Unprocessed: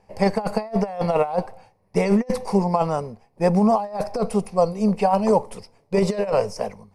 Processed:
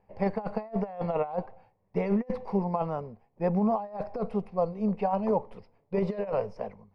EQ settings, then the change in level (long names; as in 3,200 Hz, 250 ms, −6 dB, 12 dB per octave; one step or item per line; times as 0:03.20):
high-frequency loss of the air 360 metres
−7.5 dB